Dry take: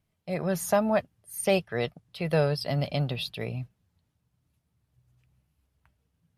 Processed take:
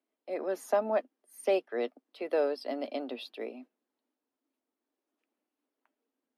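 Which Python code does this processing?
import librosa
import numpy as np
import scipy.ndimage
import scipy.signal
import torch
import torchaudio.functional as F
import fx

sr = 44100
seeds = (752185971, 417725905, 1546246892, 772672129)

y = scipy.signal.sosfilt(scipy.signal.butter(12, 250.0, 'highpass', fs=sr, output='sos'), x)
y = fx.tilt_eq(y, sr, slope=-3.0)
y = y * 10.0 ** (-5.0 / 20.0)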